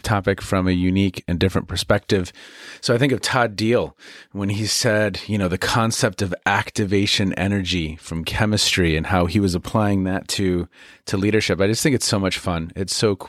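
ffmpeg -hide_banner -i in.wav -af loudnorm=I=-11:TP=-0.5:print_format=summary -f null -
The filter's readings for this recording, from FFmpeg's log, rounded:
Input Integrated:    -20.4 LUFS
Input True Peak:      -2.4 dBTP
Input LRA:             1.2 LU
Input Threshold:     -30.6 LUFS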